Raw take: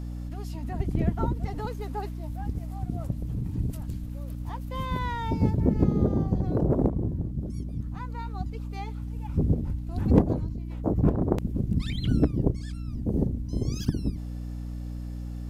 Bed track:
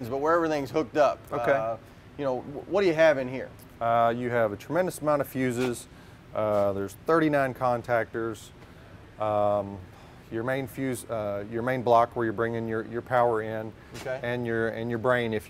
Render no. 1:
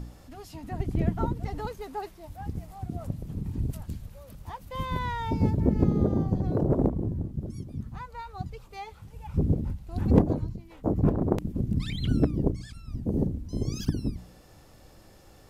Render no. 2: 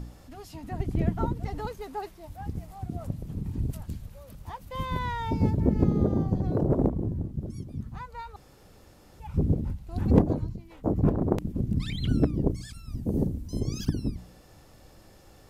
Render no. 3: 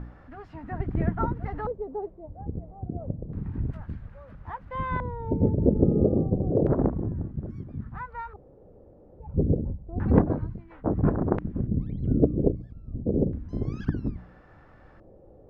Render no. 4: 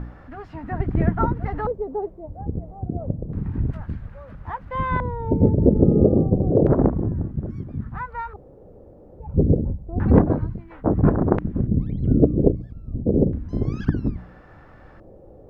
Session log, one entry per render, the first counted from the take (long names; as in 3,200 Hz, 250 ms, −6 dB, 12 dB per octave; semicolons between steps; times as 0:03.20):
hum removal 60 Hz, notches 5
0:08.36–0:09.20: fill with room tone; 0:12.50–0:13.60: high-shelf EQ 6,200 Hz +10 dB
auto-filter low-pass square 0.3 Hz 520–1,600 Hz
level +6 dB; brickwall limiter −2 dBFS, peak gain reduction 2.5 dB